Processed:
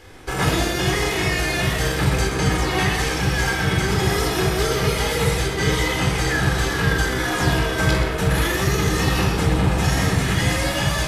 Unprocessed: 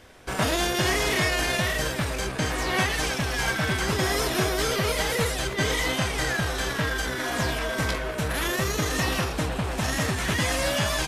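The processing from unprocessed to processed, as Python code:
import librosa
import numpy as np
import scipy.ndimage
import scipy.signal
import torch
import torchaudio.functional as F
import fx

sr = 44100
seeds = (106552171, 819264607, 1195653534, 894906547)

p1 = fx.rider(x, sr, range_db=4, speed_s=0.5)
p2 = p1 + fx.echo_single(p1, sr, ms=126, db=-10.0, dry=0)
y = fx.room_shoebox(p2, sr, seeds[0], volume_m3=2700.0, walls='furnished', distance_m=4.0)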